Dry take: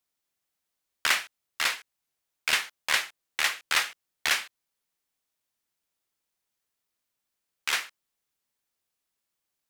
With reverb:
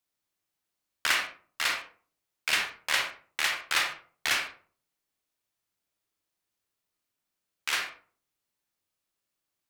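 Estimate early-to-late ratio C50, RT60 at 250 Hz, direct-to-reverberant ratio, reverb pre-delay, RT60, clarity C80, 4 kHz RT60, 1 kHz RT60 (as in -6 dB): 5.5 dB, 0.50 s, 2.5 dB, 30 ms, 0.45 s, 11.5 dB, 0.25 s, 0.40 s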